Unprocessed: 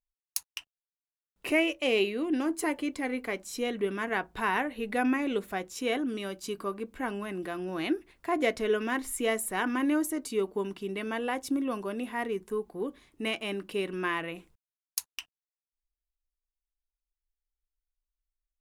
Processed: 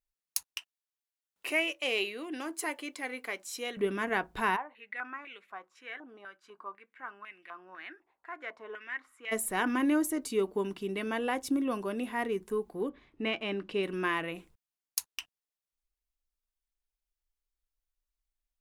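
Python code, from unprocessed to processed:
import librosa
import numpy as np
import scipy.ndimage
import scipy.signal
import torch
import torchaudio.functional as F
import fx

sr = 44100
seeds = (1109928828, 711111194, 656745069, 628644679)

y = fx.highpass(x, sr, hz=1000.0, slope=6, at=(0.58, 3.77))
y = fx.filter_held_bandpass(y, sr, hz=4.0, low_hz=840.0, high_hz=2300.0, at=(4.55, 9.31), fade=0.02)
y = fx.lowpass(y, sr, hz=fx.line((12.88, 2500.0), (13.82, 5100.0)), slope=12, at=(12.88, 13.82), fade=0.02)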